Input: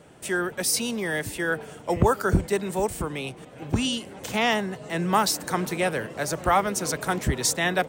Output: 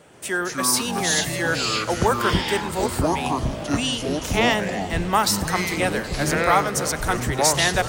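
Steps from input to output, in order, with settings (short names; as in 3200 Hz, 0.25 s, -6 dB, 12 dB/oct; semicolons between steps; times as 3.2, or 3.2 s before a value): low shelf 450 Hz -6.5 dB; on a send: multi-head echo 96 ms, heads first and third, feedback 72%, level -20 dB; on the sum: echoes that change speed 0.134 s, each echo -6 st, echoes 3; gain +3.5 dB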